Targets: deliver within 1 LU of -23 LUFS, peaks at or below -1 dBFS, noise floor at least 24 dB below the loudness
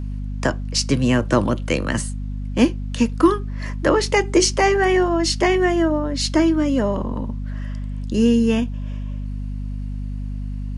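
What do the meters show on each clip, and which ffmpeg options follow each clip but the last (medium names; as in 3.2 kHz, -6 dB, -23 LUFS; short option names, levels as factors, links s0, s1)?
hum 50 Hz; highest harmonic 250 Hz; hum level -24 dBFS; loudness -20.5 LUFS; peak level -3.5 dBFS; loudness target -23.0 LUFS
-> -af "bandreject=f=50:t=h:w=6,bandreject=f=100:t=h:w=6,bandreject=f=150:t=h:w=6,bandreject=f=200:t=h:w=6,bandreject=f=250:t=h:w=6"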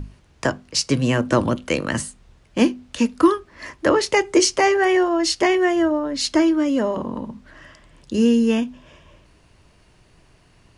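hum not found; loudness -20.0 LUFS; peak level -3.5 dBFS; loudness target -23.0 LUFS
-> -af "volume=0.708"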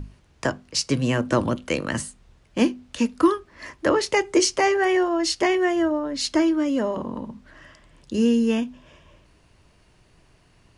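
loudness -23.0 LUFS; peak level -6.5 dBFS; noise floor -58 dBFS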